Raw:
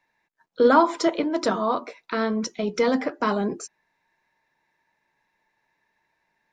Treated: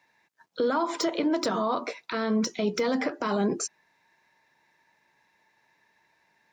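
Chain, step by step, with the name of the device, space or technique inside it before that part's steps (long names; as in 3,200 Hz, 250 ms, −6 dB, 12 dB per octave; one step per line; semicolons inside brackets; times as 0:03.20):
broadcast voice chain (high-pass filter 72 Hz; de-essing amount 70%; downward compressor 5 to 1, threshold −24 dBFS, peak gain reduction 11.5 dB; parametric band 5,300 Hz +3.5 dB 1.7 octaves; brickwall limiter −22 dBFS, peak gain reduction 10.5 dB)
level +4.5 dB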